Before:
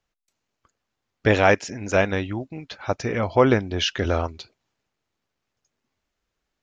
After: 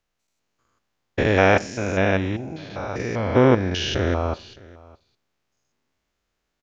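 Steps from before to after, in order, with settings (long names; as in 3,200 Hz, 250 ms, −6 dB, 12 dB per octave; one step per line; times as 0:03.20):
spectrum averaged block by block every 200 ms
single-tap delay 614 ms −23 dB
four-comb reverb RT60 0.34 s, combs from 31 ms, DRR 18 dB
level +4 dB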